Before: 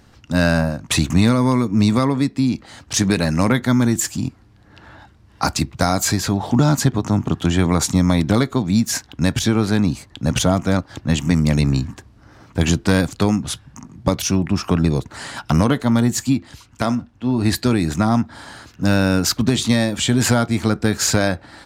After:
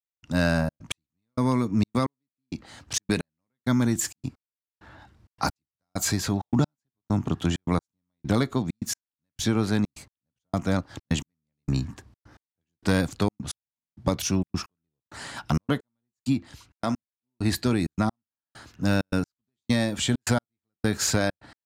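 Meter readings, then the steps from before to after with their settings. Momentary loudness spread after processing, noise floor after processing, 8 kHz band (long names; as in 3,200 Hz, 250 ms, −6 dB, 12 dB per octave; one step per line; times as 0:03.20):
14 LU, below −85 dBFS, −9.0 dB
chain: gate pattern "..xxxx.x.." 131 BPM −60 dB
level −6.5 dB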